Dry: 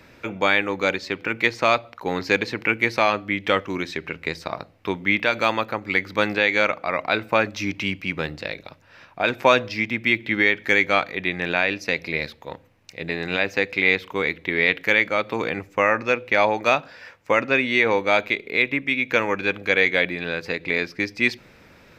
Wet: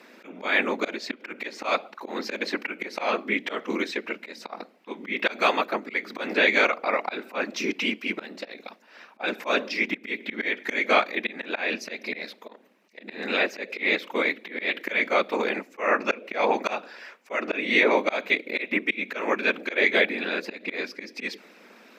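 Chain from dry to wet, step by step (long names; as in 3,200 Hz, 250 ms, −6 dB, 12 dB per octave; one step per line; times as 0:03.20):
random phases in short frames
volume swells 184 ms
linear-phase brick-wall high-pass 190 Hz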